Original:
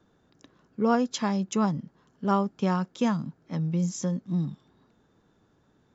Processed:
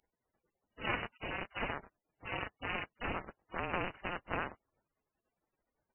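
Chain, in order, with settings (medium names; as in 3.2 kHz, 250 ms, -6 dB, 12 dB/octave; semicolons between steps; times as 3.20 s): cycle switcher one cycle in 2, inverted; spectral gate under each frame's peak -30 dB weak; frequency inversion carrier 2.9 kHz; trim +13.5 dB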